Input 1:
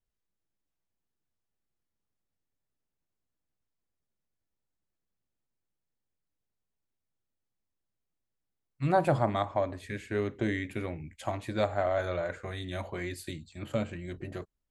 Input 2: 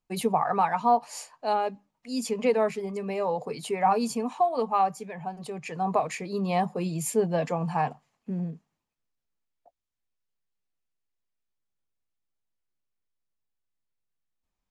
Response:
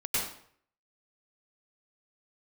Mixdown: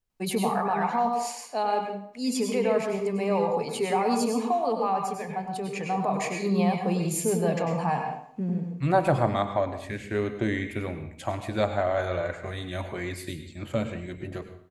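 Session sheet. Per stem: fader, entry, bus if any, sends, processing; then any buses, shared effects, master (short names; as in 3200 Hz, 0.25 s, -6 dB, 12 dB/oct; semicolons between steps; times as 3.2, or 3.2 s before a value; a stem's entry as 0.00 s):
+2.0 dB, 0.00 s, send -15.5 dB, dry
-0.5 dB, 0.10 s, send -8 dB, limiter -20 dBFS, peak gain reduction 8.5 dB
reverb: on, RT60 0.60 s, pre-delay 92 ms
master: dry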